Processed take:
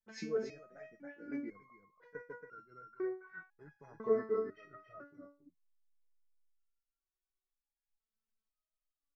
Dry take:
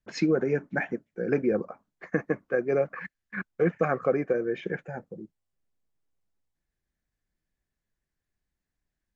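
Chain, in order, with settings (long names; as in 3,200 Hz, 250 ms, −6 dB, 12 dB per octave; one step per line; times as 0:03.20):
pitch glide at a constant tempo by −6 semitones starting unshifted
single-tap delay 278 ms −7.5 dB
step-sequenced resonator 2 Hz 220–1,400 Hz
level +2 dB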